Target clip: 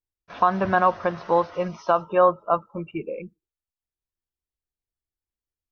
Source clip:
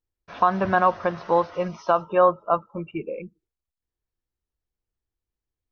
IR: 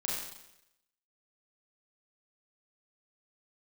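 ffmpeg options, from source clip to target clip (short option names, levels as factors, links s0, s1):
-af "agate=range=0.398:threshold=0.00501:ratio=16:detection=peak"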